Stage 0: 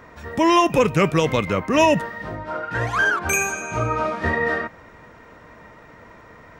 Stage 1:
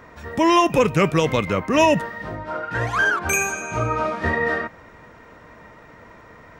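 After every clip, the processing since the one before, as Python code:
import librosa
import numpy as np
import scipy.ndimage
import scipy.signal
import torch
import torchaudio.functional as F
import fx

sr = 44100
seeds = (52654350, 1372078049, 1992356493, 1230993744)

y = x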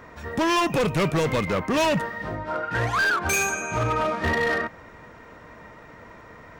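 y = np.clip(x, -10.0 ** (-19.0 / 20.0), 10.0 ** (-19.0 / 20.0))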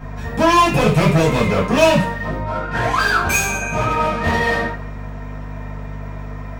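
y = fx.add_hum(x, sr, base_hz=50, snr_db=12)
y = fx.rev_double_slope(y, sr, seeds[0], early_s=0.38, late_s=1.6, knee_db=-27, drr_db=-8.5)
y = y * 10.0 ** (-1.5 / 20.0)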